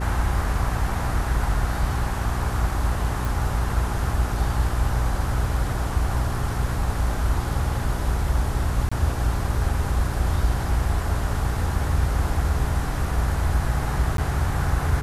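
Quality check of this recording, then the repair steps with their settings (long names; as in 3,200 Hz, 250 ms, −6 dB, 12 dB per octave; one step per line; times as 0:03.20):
mains hum 60 Hz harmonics 7 −28 dBFS
0:03.25: click
0:08.89–0:08.91: drop-out 25 ms
0:14.17–0:14.18: drop-out 12 ms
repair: click removal
hum removal 60 Hz, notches 7
repair the gap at 0:08.89, 25 ms
repair the gap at 0:14.17, 12 ms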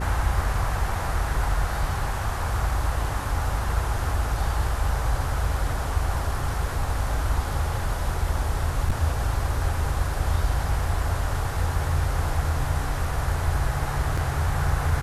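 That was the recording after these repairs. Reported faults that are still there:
none of them is left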